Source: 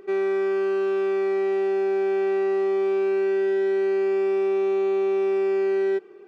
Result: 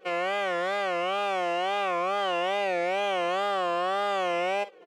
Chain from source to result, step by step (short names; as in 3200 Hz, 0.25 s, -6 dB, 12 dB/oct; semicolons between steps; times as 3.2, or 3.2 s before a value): varispeed +29%; steep high-pass 200 Hz; early reflections 41 ms -16 dB, 52 ms -11.5 dB; formant-preserving pitch shift -5 st; wow and flutter 140 cents; gain -6 dB